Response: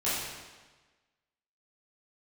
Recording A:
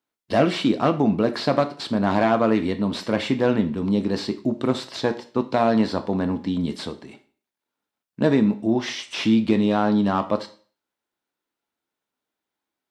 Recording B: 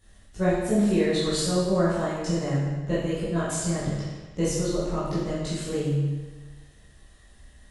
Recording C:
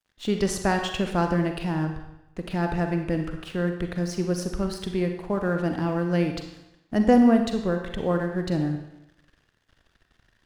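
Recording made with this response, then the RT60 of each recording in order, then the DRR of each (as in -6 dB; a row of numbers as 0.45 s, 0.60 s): B; 0.45 s, 1.3 s, 0.90 s; 9.0 dB, -11.5 dB, 4.5 dB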